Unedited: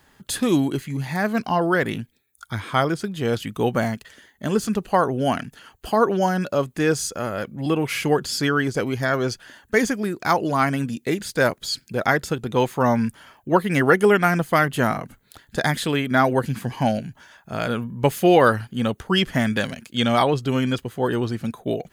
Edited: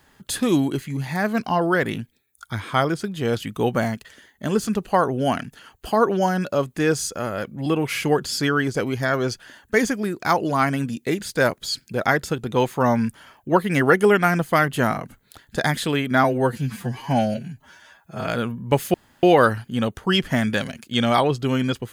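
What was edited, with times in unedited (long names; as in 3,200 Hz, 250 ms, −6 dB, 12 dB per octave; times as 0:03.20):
0:16.24–0:17.60: time-stretch 1.5×
0:18.26: splice in room tone 0.29 s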